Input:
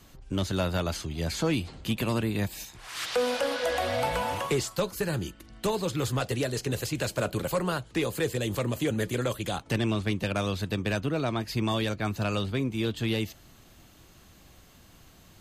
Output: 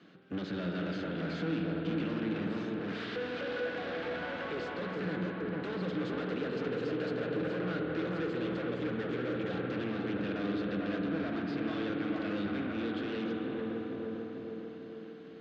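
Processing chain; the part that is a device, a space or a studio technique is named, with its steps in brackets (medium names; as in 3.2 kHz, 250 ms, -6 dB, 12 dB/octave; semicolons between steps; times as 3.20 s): high-pass 170 Hz 24 dB/octave; analogue delay pedal into a guitar amplifier (bucket-brigade echo 448 ms, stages 4096, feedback 56%, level -5.5 dB; valve stage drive 40 dB, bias 0.75; cabinet simulation 81–3900 Hz, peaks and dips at 86 Hz +8 dB, 180 Hz +10 dB, 310 Hz +9 dB, 470 Hz +6 dB, 940 Hz -7 dB, 1.5 kHz +8 dB); spring tank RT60 4 s, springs 49 ms, chirp 30 ms, DRR 2 dB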